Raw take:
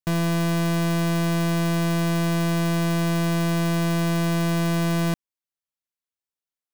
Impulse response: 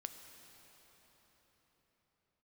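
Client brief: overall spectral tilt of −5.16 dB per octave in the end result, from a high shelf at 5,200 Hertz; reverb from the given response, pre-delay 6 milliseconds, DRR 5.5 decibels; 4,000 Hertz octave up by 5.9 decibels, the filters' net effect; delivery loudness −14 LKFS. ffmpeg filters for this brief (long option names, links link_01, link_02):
-filter_complex "[0:a]equalizer=frequency=4000:width_type=o:gain=6,highshelf=frequency=5200:gain=4,asplit=2[link_01][link_02];[1:a]atrim=start_sample=2205,adelay=6[link_03];[link_02][link_03]afir=irnorm=-1:irlink=0,volume=-2dB[link_04];[link_01][link_04]amix=inputs=2:normalize=0,volume=5dB"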